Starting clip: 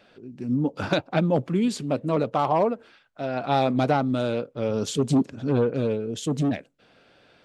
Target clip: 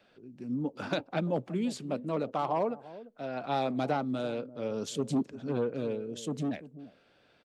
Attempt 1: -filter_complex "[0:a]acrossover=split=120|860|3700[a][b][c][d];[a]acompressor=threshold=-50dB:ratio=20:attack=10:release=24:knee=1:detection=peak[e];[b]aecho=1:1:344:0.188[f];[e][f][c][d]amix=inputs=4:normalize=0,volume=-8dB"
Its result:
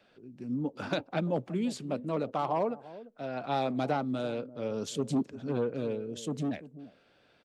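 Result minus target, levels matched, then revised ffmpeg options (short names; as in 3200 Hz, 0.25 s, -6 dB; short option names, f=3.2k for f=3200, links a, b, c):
compressor: peak gain reduction -9 dB
-filter_complex "[0:a]acrossover=split=120|860|3700[a][b][c][d];[a]acompressor=threshold=-59.5dB:ratio=20:attack=10:release=24:knee=1:detection=peak[e];[b]aecho=1:1:344:0.188[f];[e][f][c][d]amix=inputs=4:normalize=0,volume=-8dB"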